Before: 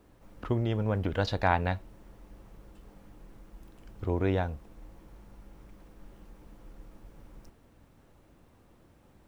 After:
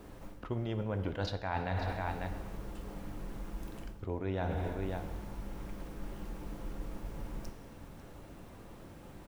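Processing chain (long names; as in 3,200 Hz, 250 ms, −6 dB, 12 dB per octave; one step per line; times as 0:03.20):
single-tap delay 545 ms −18.5 dB
reverb whose tail is shaped and stops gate 450 ms falling, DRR 8.5 dB
reversed playback
downward compressor 20 to 1, threshold −40 dBFS, peak gain reduction 22 dB
reversed playback
level +9 dB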